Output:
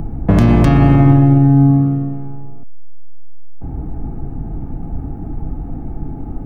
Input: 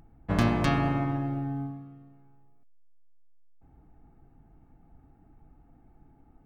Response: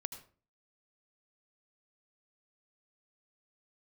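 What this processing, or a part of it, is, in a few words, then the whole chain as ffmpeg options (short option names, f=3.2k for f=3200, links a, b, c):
mastering chain: -filter_complex "[0:a]equalizer=f=4k:t=o:w=0.44:g=-3.5,acrossover=split=94|2100[a][b][c];[a]acompressor=threshold=-40dB:ratio=4[d];[b]acompressor=threshold=-36dB:ratio=4[e];[c]acompressor=threshold=-43dB:ratio=4[f];[d][e][f]amix=inputs=3:normalize=0,acompressor=threshold=-41dB:ratio=1.5,tiltshelf=f=880:g=8,alimiter=level_in=26.5dB:limit=-1dB:release=50:level=0:latency=1,volume=-1dB"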